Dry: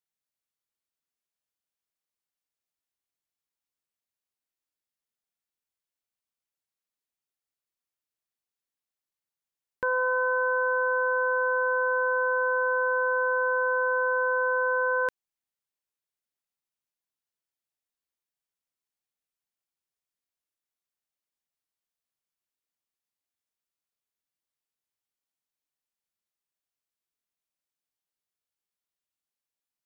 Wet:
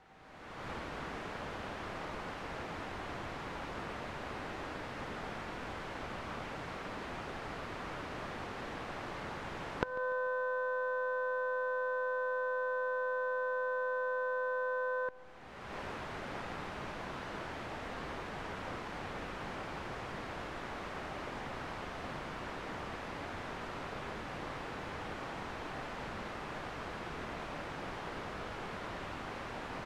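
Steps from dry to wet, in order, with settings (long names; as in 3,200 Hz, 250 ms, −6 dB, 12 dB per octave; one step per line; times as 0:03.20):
converter with a step at zero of −40.5 dBFS
camcorder AGC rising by 31 dB per second
low-pass filter 1,400 Hz 12 dB per octave
downward compressor 6 to 1, threshold −30 dBFS, peak gain reduction 16 dB
on a send: repeating echo 146 ms, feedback 52%, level −19 dB
on the sum: pitch-shifted copies added +3 semitones −17 dB
in parallel at −11.5 dB: slack as between gear wheels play −31 dBFS
on the sum: steady tone 770 Hz −61 dBFS
level −3.5 dB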